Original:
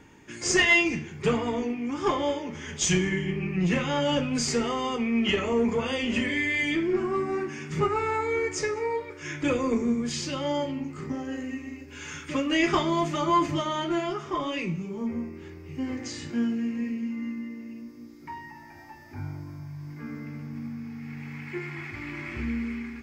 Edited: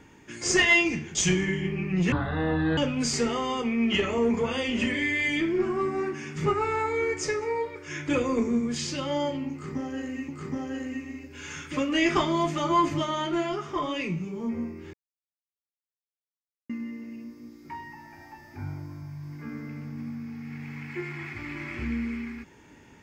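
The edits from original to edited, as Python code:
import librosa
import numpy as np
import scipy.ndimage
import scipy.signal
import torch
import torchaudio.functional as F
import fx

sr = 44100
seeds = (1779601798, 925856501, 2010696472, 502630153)

y = fx.edit(x, sr, fx.cut(start_s=1.15, length_s=1.64),
    fx.speed_span(start_s=3.76, length_s=0.36, speed=0.55),
    fx.repeat(start_s=10.86, length_s=0.77, count=2),
    fx.silence(start_s=15.51, length_s=1.76), tone=tone)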